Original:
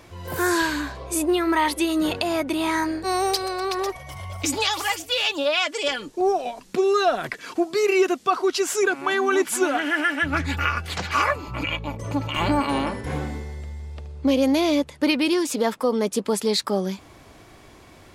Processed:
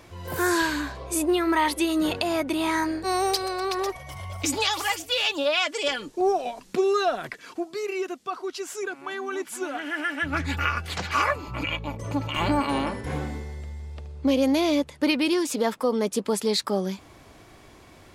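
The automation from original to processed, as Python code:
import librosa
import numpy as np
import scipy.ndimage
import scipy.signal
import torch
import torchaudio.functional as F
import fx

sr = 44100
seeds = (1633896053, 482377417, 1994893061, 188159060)

y = fx.gain(x, sr, db=fx.line((6.77, -1.5), (7.93, -10.5), (9.54, -10.5), (10.5, -2.0)))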